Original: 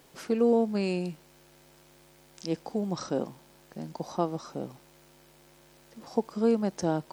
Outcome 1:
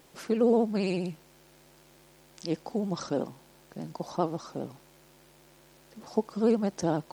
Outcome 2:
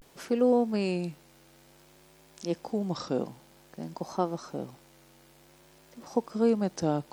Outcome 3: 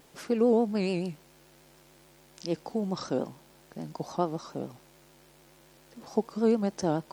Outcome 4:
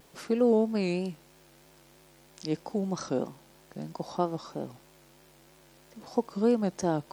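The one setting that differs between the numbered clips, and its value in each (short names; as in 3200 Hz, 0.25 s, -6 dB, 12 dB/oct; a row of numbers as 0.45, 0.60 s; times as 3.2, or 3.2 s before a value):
vibrato, rate: 15, 0.54, 6.9, 3.1 Hz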